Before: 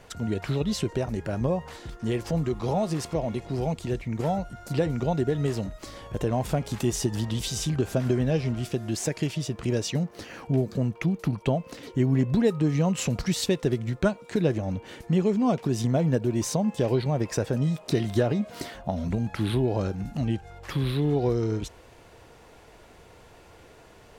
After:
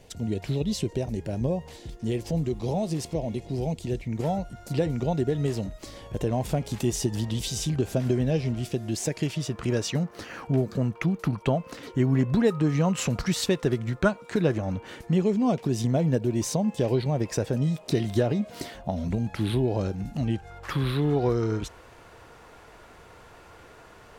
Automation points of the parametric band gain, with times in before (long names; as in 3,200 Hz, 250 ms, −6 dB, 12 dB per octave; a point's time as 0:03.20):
parametric band 1,300 Hz 0.98 octaves
0:03.76 −14 dB
0:04.27 −5.5 dB
0:09.04 −5.5 dB
0:09.50 +5.5 dB
0:14.86 +5.5 dB
0:15.29 −3.5 dB
0:20.13 −3.5 dB
0:20.63 +7 dB